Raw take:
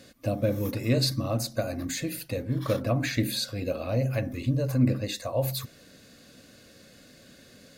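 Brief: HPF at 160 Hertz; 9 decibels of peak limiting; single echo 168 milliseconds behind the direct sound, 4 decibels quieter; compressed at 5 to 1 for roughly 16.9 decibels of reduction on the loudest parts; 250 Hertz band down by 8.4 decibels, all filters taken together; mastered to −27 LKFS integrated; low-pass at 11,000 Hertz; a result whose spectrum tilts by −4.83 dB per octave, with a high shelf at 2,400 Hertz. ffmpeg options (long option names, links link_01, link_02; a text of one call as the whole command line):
ffmpeg -i in.wav -af "highpass=160,lowpass=11000,equalizer=frequency=250:width_type=o:gain=-9,highshelf=frequency=2400:gain=-7.5,acompressor=threshold=-45dB:ratio=5,alimiter=level_in=15dB:limit=-24dB:level=0:latency=1,volume=-15dB,aecho=1:1:168:0.631,volume=21.5dB" out.wav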